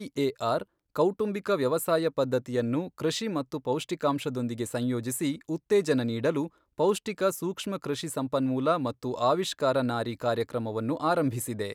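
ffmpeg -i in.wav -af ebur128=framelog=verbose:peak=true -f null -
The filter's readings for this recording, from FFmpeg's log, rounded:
Integrated loudness:
  I:         -28.7 LUFS
  Threshold: -38.7 LUFS
Loudness range:
  LRA:         1.6 LU
  Threshold: -48.7 LUFS
  LRA low:   -29.7 LUFS
  LRA high:  -28.0 LUFS
True peak:
  Peak:      -12.1 dBFS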